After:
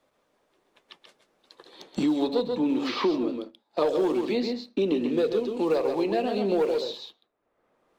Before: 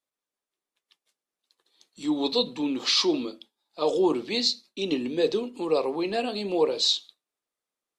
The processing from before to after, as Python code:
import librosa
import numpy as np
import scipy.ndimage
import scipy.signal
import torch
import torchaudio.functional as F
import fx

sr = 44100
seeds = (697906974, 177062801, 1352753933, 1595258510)

y = fx.lowpass(x, sr, hz=1100.0, slope=6)
y = fx.peak_eq(y, sr, hz=580.0, db=3.0, octaves=0.77)
y = fx.leveller(y, sr, passes=1)
y = y + 10.0 ** (-7.0 / 20.0) * np.pad(y, (int(132 * sr / 1000.0), 0))[:len(y)]
y = fx.band_squash(y, sr, depth_pct=100)
y = y * librosa.db_to_amplitude(-3.5)